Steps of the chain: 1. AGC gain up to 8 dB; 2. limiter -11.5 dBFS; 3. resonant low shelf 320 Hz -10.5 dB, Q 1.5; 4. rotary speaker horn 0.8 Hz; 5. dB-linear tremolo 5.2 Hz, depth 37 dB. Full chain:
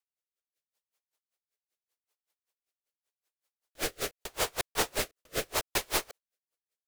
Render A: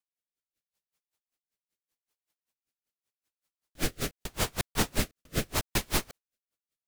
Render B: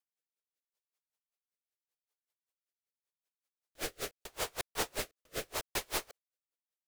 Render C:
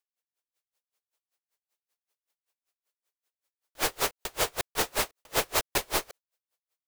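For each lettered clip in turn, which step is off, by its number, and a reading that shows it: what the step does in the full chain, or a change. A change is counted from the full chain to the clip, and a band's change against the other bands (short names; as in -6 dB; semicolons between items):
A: 3, 125 Hz band +12.0 dB; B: 1, loudness change -6.0 LU; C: 4, 1 kHz band +2.0 dB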